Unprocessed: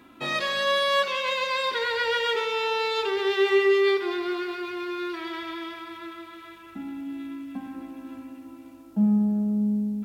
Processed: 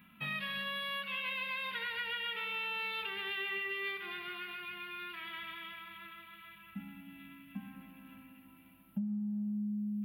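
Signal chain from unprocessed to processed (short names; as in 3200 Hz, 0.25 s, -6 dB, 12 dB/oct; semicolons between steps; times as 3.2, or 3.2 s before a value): EQ curve 100 Hz 0 dB, 200 Hz +13 dB, 300 Hz -18 dB, 2900 Hz +7 dB, 6800 Hz -29 dB, 11000 Hz +9 dB; compressor 20:1, threshold -26 dBFS, peak gain reduction 19 dB; gain -8 dB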